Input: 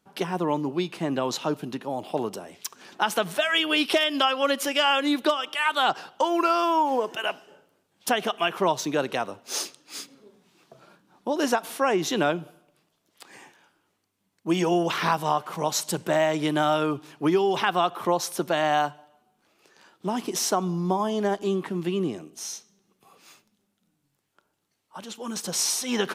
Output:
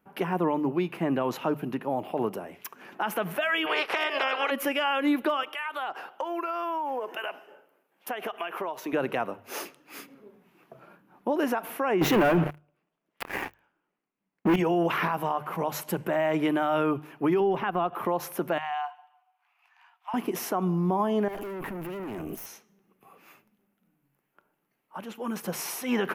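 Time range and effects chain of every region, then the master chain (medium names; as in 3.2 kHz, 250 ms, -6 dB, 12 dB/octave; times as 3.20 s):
3.65–4.50 s: spectral peaks clipped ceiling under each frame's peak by 25 dB + low-pass 4.8 kHz + resonant low shelf 310 Hz -12.5 dB, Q 1.5
5.43–8.93 s: high-pass 350 Hz + compression 10:1, threshold -29 dBFS
12.01–14.56 s: low-pass 6.8 kHz + waveshaping leveller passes 5
17.40–17.93 s: tilt EQ -2 dB/octave + transient shaper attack +4 dB, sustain -6 dB
18.58–20.14 s: rippled Chebyshev high-pass 700 Hz, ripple 6 dB + treble shelf 9.3 kHz -9 dB + compression 3:1, threshold -31 dBFS
21.28–22.46 s: valve stage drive 37 dB, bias 0.7 + treble shelf 9.2 kHz +11.5 dB + level flattener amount 100%
whole clip: high-order bell 5.6 kHz -15 dB; hum notches 50/100/150 Hz; peak limiter -18.5 dBFS; trim +1.5 dB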